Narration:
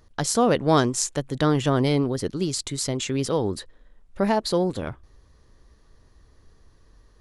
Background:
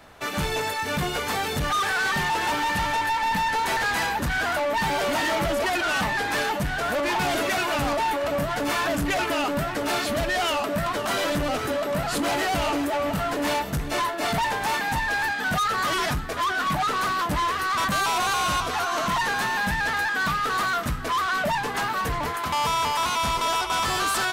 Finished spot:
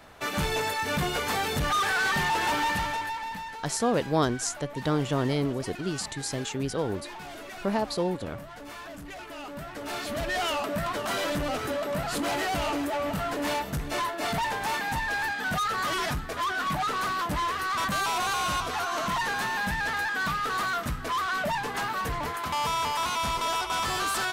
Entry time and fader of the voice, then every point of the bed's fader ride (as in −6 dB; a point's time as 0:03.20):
3.45 s, −5.5 dB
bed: 0:02.66 −1.5 dB
0:03.65 −17 dB
0:09.24 −17 dB
0:10.36 −4 dB